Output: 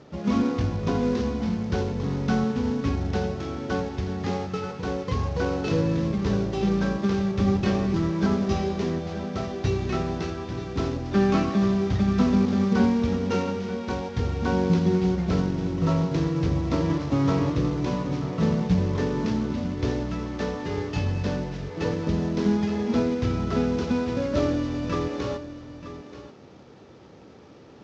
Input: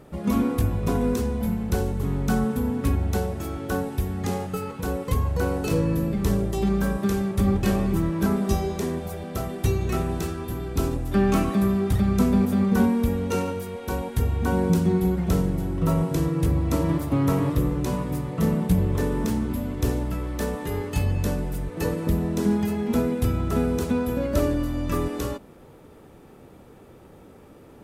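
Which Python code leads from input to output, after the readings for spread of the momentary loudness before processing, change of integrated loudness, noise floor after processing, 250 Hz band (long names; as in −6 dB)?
8 LU, −1.0 dB, −48 dBFS, 0.0 dB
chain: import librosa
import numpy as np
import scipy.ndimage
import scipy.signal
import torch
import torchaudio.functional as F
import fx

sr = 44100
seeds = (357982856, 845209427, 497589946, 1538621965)

p1 = fx.cvsd(x, sr, bps=32000)
p2 = scipy.signal.sosfilt(scipy.signal.butter(2, 83.0, 'highpass', fs=sr, output='sos'), p1)
y = p2 + fx.echo_single(p2, sr, ms=932, db=-13.0, dry=0)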